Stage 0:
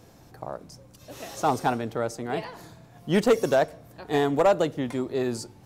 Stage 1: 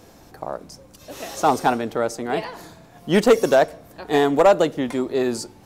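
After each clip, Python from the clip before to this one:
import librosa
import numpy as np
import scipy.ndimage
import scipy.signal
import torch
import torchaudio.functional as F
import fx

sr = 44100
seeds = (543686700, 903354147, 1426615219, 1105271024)

y = fx.peak_eq(x, sr, hz=120.0, db=-8.5, octaves=0.82)
y = F.gain(torch.from_numpy(y), 6.0).numpy()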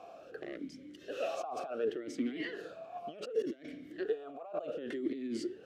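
y = fx.over_compress(x, sr, threshold_db=-29.0, ratio=-1.0)
y = np.clip(10.0 ** (19.0 / 20.0) * y, -1.0, 1.0) / 10.0 ** (19.0 / 20.0)
y = fx.vowel_sweep(y, sr, vowels='a-i', hz=0.67)
y = F.gain(torch.from_numpy(y), 1.0).numpy()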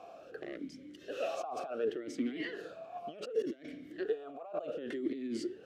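y = x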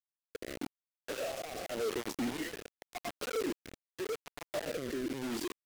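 y = fx.quant_companded(x, sr, bits=2)
y = fx.rotary(y, sr, hz=0.85)
y = F.gain(torch.from_numpy(y), -5.5).numpy()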